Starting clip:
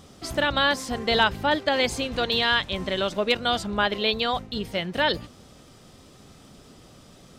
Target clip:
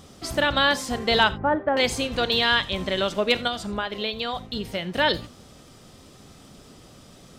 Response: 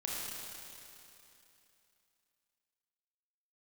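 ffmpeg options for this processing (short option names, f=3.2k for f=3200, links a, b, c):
-filter_complex "[0:a]asettb=1/sr,asplit=3[a][b][c];[a]atrim=end=1.294[d];[b]atrim=start=1.29:end=1.77,asetpts=PTS-STARTPTS,afade=t=in:d=0.004:c=qsin,afade=t=out:st=0.476:d=0.004:c=qsin,lowpass=f=1.5k:w=0.5412,lowpass=f=1.5k:w=1.3066[e];[c]atrim=start=1.766[f];[d][e]acrossfade=d=0.004:c1=hsin:c2=qsin[g];[g][f]acrossfade=d=0.004:c1=qsin:c2=hsin,asettb=1/sr,asplit=3[h][i][j];[h]atrim=end=3.474[k];[i]atrim=start=3.47:end=4.87,asetpts=PTS-STARTPTS,afade=t=in:d=0.004:c=qsin,afade=t=out:st=1.396:d=0.004:c=qsin,acompressor=threshold=-26dB:ratio=6[l];[j]atrim=start=4.866[m];[k][l]acrossfade=d=0.004:c1=hsin:c2=qsin[n];[n][m]acrossfade=d=0.004:c1=qsin:c2=hsin,asplit=2[o][p];[1:a]atrim=start_sample=2205,atrim=end_sample=4410,highshelf=f=4.2k:g=8[q];[p][q]afir=irnorm=-1:irlink=0,volume=-13.5dB[r];[o][r]amix=inputs=2:normalize=0"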